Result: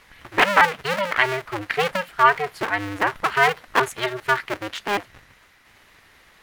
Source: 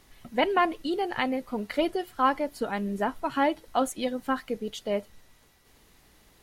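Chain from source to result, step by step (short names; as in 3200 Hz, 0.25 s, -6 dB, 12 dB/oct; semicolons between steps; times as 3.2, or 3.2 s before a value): cycle switcher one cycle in 2, inverted; bell 1800 Hz +14.5 dB 2.2 oct; gain -1.5 dB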